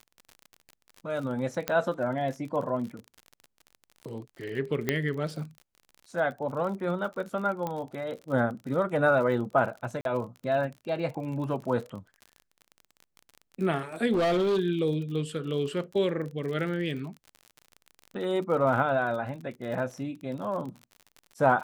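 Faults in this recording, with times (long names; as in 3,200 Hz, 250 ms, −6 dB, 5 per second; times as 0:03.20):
surface crackle 41 per second −36 dBFS
0:01.68: click −12 dBFS
0:04.89: click −11 dBFS
0:07.67: click −19 dBFS
0:10.01–0:10.05: drop-out 42 ms
0:14.12–0:14.60: clipping −22 dBFS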